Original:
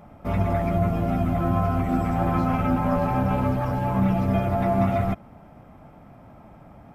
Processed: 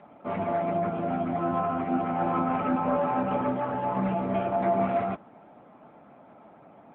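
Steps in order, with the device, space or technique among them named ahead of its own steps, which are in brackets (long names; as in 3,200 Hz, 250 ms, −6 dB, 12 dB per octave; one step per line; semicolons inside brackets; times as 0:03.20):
telephone (band-pass filter 270–3,200 Hz; AMR narrowband 10.2 kbit/s 8,000 Hz)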